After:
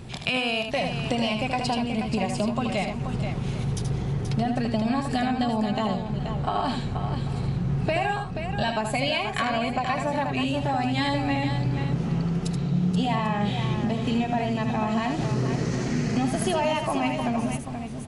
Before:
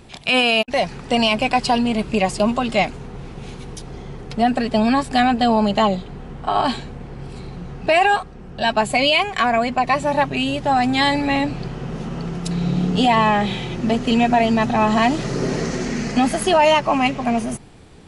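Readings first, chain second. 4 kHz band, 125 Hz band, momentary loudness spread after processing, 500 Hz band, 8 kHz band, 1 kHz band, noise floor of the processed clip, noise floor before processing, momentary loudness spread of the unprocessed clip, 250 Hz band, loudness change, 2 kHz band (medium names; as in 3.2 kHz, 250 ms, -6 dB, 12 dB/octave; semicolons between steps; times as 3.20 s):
-9.0 dB, +2.0 dB, 4 LU, -8.5 dB, -6.0 dB, -9.0 dB, -32 dBFS, -38 dBFS, 19 LU, -5.5 dB, -7.5 dB, -9.0 dB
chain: peaking EQ 120 Hz +10 dB 1.3 oct; compression, threshold -24 dBFS, peak gain reduction 13.5 dB; on a send: multi-tap echo 78/480/793 ms -6.5/-8/-17.5 dB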